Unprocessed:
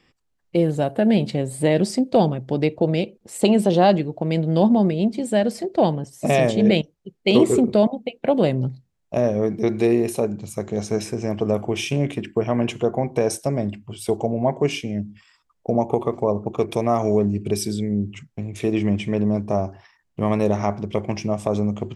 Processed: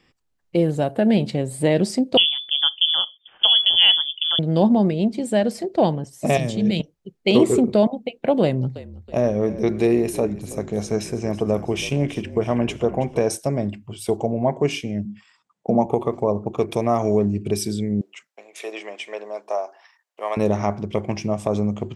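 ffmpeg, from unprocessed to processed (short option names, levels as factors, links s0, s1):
-filter_complex "[0:a]asettb=1/sr,asplit=3[s0][s1][s2];[s0]atrim=end=2.174[s3];[s1]atrim=start=2.17:end=4.39,asetpts=PTS-STARTPTS,afade=t=in:d=0.004:c=qsin,afade=t=out:st=2.216:d=0.004:c=qsin,lowpass=f=3100:t=q:w=0.5098,lowpass=f=3100:t=q:w=0.6013,lowpass=f=3100:t=q:w=0.9,lowpass=f=3100:t=q:w=2.563,afreqshift=-3600[s4];[s2]atrim=start=4.386[s5];[s3][s4]acrossfade=d=0.004:c1=hsin:c2=qsin[s6];[s6][s5]acrossfade=d=0.004:c1=qsin:c2=hsin,asettb=1/sr,asplit=3[s7][s8][s9];[s7]atrim=end=6.374[s10];[s8]atrim=start=6.37:end=6.8,asetpts=PTS-STARTPTS,afade=t=in:d=0.004:c=qsin,afade=t=out:st=0.426:d=0.004:c=qsin,acrossover=split=240|3000[s11][s12][s13];[s12]acompressor=threshold=0.0316:ratio=4:attack=3.2:release=140:knee=2.83:detection=peak[s14];[s11][s14][s13]amix=inputs=3:normalize=0[s15];[s9]atrim=start=6.796[s16];[s10][s15]acrossfade=d=0.004:c1=hsin:c2=qsin[s17];[s17][s16]acrossfade=d=0.004:c1=qsin:c2=hsin,asettb=1/sr,asplit=3[s18][s19][s20];[s18]atrim=end=8.434[s21];[s19]atrim=start=8.43:end=13.23,asetpts=PTS-STARTPTS,afade=t=in:d=0.004:c=qsin,afade=t=out:st=4.796:d=0.004:c=qsin,asplit=5[s22][s23][s24][s25][s26];[s23]adelay=324,afreqshift=-46,volume=0.158[s27];[s24]adelay=648,afreqshift=-92,volume=0.0684[s28];[s25]adelay=972,afreqshift=-138,volume=0.0292[s29];[s26]adelay=1296,afreqshift=-184,volume=0.0126[s30];[s22][s27][s28][s29][s30]amix=inputs=5:normalize=0,atrim=end_sample=211680[s31];[s20]atrim=start=13.226[s32];[s21][s31]acrossfade=d=0.004:c1=hsin:c2=qsin[s33];[s33][s32]acrossfade=d=0.004:c1=qsin:c2=hsin,asettb=1/sr,asplit=3[s34][s35][s36];[s34]atrim=end=15.054[s37];[s35]atrim=start=15.05:end=15.86,asetpts=PTS-STARTPTS,afade=t=in:d=0.004:c=qsin,afade=t=out:st=0.806:d=0.004:c=qsin,highpass=f=110:w=0.5412,highpass=f=110:w=1.3066,equalizer=f=200:t=q:w=4:g=8,equalizer=f=820:t=q:w=4:g=4,equalizer=f=5200:t=q:w=4:g=-3,lowpass=f=9000:w=0.5412,lowpass=f=9000:w=1.3066[s38];[s36]atrim=start=15.856[s39];[s37][s38]acrossfade=d=0.004:c1=hsin:c2=qsin[s40];[s40][s39]acrossfade=d=0.004:c1=qsin:c2=hsin,asettb=1/sr,asplit=3[s41][s42][s43];[s41]atrim=end=18.014[s44];[s42]atrim=start=18.01:end=20.37,asetpts=PTS-STARTPTS,afade=t=in:d=0.004:c=qsin,afade=t=out:st=2.356:d=0.004:c=qsin,highpass=f=530:w=0.5412,highpass=f=530:w=1.3066[s45];[s43]atrim=start=20.366[s46];[s44][s45]acrossfade=d=0.004:c1=hsin:c2=qsin[s47];[s47][s46]acrossfade=d=0.004:c1=qsin:c2=hsin"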